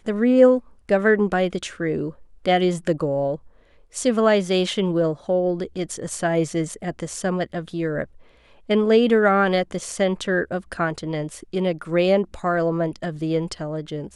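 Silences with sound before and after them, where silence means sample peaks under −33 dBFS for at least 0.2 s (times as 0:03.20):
0:00.59–0:00.89
0:02.11–0:02.46
0:03.36–0:03.94
0:08.04–0:08.69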